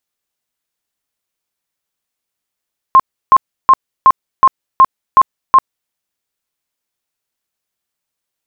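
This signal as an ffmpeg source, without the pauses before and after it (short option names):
-f lavfi -i "aevalsrc='0.794*sin(2*PI*1060*mod(t,0.37))*lt(mod(t,0.37),49/1060)':d=2.96:s=44100"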